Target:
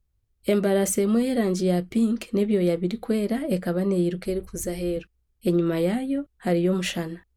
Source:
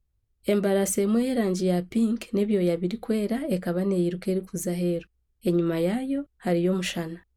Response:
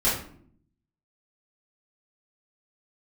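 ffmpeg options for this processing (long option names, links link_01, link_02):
-filter_complex "[0:a]asettb=1/sr,asplit=3[link_01][link_02][link_03];[link_01]atrim=end=4.254[link_04];[link_02]atrim=start=4.25:end=4.97,asetpts=PTS-STARTPTS,afade=type=in:duration=0.004:curve=qsin,afade=type=out:start_time=0.716:duration=0.004:curve=qsin,lowshelf=frequency=120:width_type=q:width=3:gain=11[link_05];[link_03]atrim=start=4.966[link_06];[link_04][link_05]acrossfade=duration=0.004:curve1=hsin:curve2=qsin[link_07];[link_07][link_06]acrossfade=duration=0.004:curve1=qsin:curve2=hsin,volume=1.5dB"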